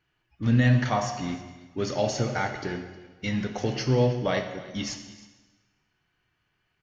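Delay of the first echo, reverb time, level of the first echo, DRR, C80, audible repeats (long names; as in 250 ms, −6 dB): 313 ms, 1.3 s, −20.5 dB, 6.0 dB, 9.5 dB, 1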